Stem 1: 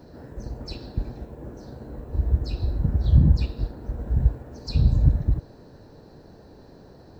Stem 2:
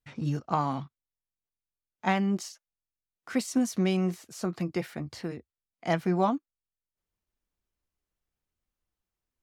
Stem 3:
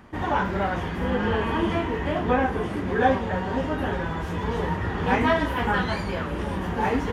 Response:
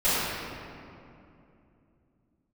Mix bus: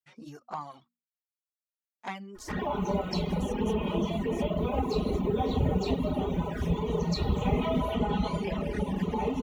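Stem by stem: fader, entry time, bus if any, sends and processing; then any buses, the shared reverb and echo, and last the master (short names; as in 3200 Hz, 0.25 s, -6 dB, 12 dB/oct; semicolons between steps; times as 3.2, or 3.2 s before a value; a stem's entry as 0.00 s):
+0.5 dB, 2.45 s, no bus, send -21 dB, tone controls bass -13 dB, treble +8 dB
-4.5 dB, 0.00 s, bus A, no send, HPF 300 Hz 6 dB/oct; high shelf 9200 Hz +7 dB
+0.5 dB, 2.35 s, bus A, send -24 dB, comb 4.8 ms, depth 76%
bus A: 0.0 dB, notches 60/120/180/240 Hz; compressor 6:1, threshold -27 dBFS, peak gain reduction 13.5 dB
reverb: on, RT60 2.7 s, pre-delay 4 ms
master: reverb removal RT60 0.92 s; envelope flanger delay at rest 6.4 ms, full sweep at -25.5 dBFS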